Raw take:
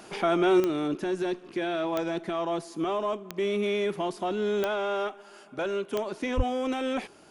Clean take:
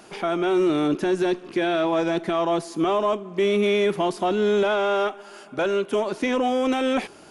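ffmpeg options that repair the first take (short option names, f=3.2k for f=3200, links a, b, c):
-filter_complex "[0:a]adeclick=t=4,asplit=3[a][b][c];[a]afade=t=out:st=6.36:d=0.02[d];[b]highpass=f=140:w=0.5412,highpass=f=140:w=1.3066,afade=t=in:st=6.36:d=0.02,afade=t=out:st=6.48:d=0.02[e];[c]afade=t=in:st=6.48:d=0.02[f];[d][e][f]amix=inputs=3:normalize=0,asetnsamples=n=441:p=0,asendcmd='0.6 volume volume 7dB',volume=0dB"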